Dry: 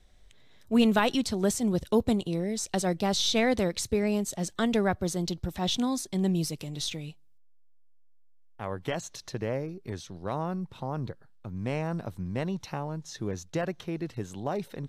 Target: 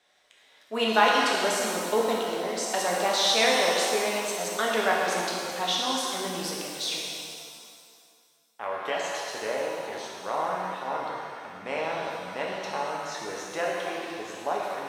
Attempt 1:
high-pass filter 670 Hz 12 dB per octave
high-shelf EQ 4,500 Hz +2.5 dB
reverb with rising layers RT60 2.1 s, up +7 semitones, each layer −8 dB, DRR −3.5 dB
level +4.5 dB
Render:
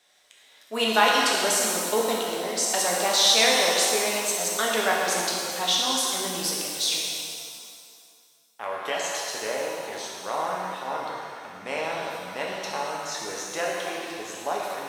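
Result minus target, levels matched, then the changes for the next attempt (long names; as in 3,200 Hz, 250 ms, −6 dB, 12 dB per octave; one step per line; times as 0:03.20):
8,000 Hz band +5.0 dB
change: high-shelf EQ 4,500 Hz −9 dB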